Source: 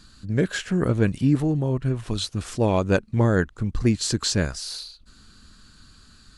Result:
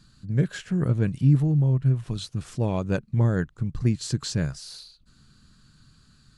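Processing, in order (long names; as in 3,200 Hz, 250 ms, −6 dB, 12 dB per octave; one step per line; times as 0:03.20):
parametric band 140 Hz +13.5 dB 0.74 octaves
level −8 dB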